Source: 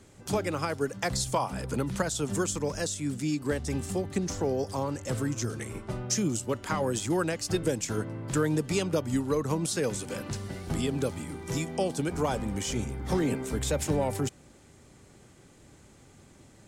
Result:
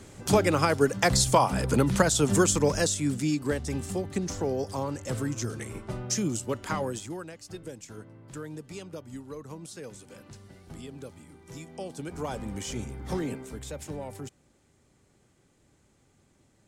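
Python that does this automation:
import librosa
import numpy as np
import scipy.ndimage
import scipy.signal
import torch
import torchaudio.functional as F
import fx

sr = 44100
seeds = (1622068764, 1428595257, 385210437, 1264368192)

y = fx.gain(x, sr, db=fx.line((2.67, 7.0), (3.71, -0.5), (6.77, -0.5), (7.26, -13.0), (11.44, -13.0), (12.47, -3.5), (13.17, -3.5), (13.63, -10.0)))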